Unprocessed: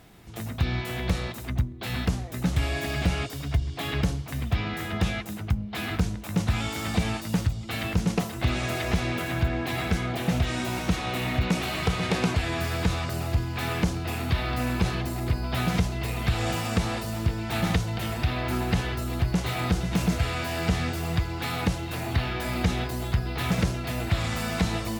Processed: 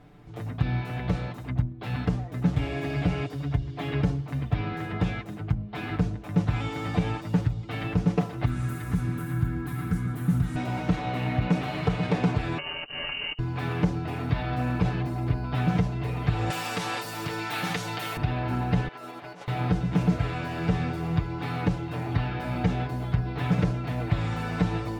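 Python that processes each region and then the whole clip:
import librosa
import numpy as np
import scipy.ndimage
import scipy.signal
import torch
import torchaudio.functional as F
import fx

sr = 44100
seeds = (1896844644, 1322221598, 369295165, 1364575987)

y = fx.chain(x, sr, fx.curve_eq(hz=(220.0, 350.0, 610.0, 1400.0, 2500.0, 3600.0, 5200.0, 9900.0), db=(0, -5, -18, -1, -13, -9, -6, 13)),
    fx.echo_single(ms=143, db=-12.0), at=(8.45, 10.56))
y = fx.chain(y, sr, fx.peak_eq(hz=1000.0, db=-5.5, octaves=0.36),
    fx.over_compress(threshold_db=-30.0, ratio=-0.5),
    fx.freq_invert(carrier_hz=2900), at=(12.58, 13.39))
y = fx.chain(y, sr, fx.highpass(hz=110.0, slope=12),
    fx.tilt_eq(slope=4.0),
    fx.env_flatten(amount_pct=50), at=(16.5, 18.17))
y = fx.chain(y, sr, fx.highpass(hz=520.0, slope=12),
    fx.over_compress(threshold_db=-39.0, ratio=-0.5), at=(18.88, 19.48))
y = fx.lowpass(y, sr, hz=1100.0, slope=6)
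y = y + 0.68 * np.pad(y, (int(6.8 * sr / 1000.0), 0))[:len(y)]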